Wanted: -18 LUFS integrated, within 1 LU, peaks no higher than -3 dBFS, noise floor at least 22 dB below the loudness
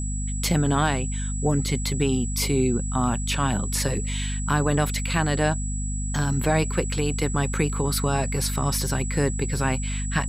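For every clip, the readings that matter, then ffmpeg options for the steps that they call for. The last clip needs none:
hum 50 Hz; harmonics up to 250 Hz; hum level -25 dBFS; steady tone 7800 Hz; tone level -34 dBFS; loudness -24.5 LUFS; peak -9.0 dBFS; loudness target -18.0 LUFS
-> -af "bandreject=f=50:t=h:w=6,bandreject=f=100:t=h:w=6,bandreject=f=150:t=h:w=6,bandreject=f=200:t=h:w=6,bandreject=f=250:t=h:w=6"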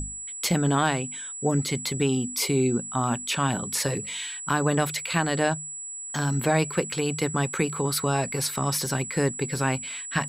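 hum none; steady tone 7800 Hz; tone level -34 dBFS
-> -af "bandreject=f=7.8k:w=30"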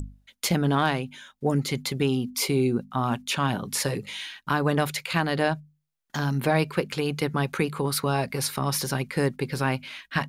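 steady tone none; loudness -26.5 LUFS; peak -10.0 dBFS; loudness target -18.0 LUFS
-> -af "volume=8.5dB,alimiter=limit=-3dB:level=0:latency=1"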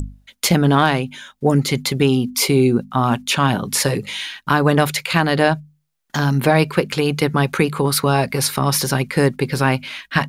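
loudness -18.0 LUFS; peak -3.0 dBFS; noise floor -65 dBFS

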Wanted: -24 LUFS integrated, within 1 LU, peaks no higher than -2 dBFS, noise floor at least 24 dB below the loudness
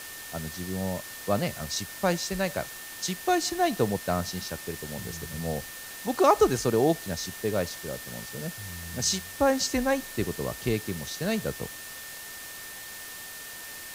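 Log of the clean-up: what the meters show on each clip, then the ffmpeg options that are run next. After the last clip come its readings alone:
steady tone 1800 Hz; tone level -45 dBFS; noise floor -41 dBFS; noise floor target -54 dBFS; loudness -29.5 LUFS; peak -8.5 dBFS; loudness target -24.0 LUFS
-> -af "bandreject=f=1.8k:w=30"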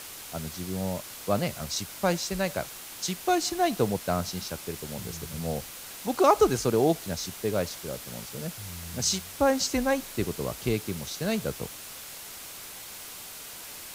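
steady tone none; noise floor -43 dBFS; noise floor target -54 dBFS
-> -af "afftdn=nr=11:nf=-43"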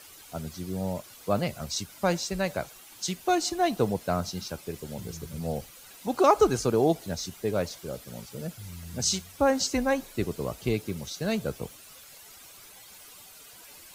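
noise floor -50 dBFS; noise floor target -53 dBFS
-> -af "afftdn=nr=6:nf=-50"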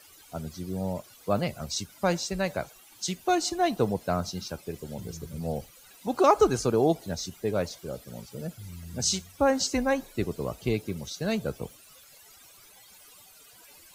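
noise floor -54 dBFS; loudness -29.0 LUFS; peak -9.0 dBFS; loudness target -24.0 LUFS
-> -af "volume=5dB"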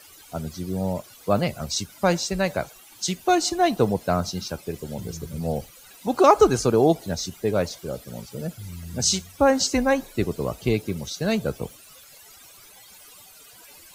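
loudness -24.0 LUFS; peak -4.0 dBFS; noise floor -49 dBFS

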